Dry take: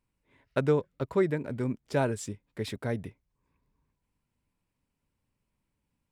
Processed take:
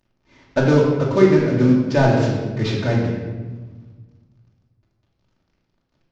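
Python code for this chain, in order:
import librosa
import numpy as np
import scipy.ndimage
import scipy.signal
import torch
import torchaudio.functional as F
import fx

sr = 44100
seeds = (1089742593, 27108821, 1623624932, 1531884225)

p1 = fx.cvsd(x, sr, bps=32000)
p2 = 10.0 ** (-31.0 / 20.0) * np.tanh(p1 / 10.0 ** (-31.0 / 20.0))
p3 = p1 + F.gain(torch.from_numpy(p2), -10.5).numpy()
p4 = fx.room_shoebox(p3, sr, seeds[0], volume_m3=1100.0, walls='mixed', distance_m=2.6)
y = F.gain(torch.from_numpy(p4), 6.0).numpy()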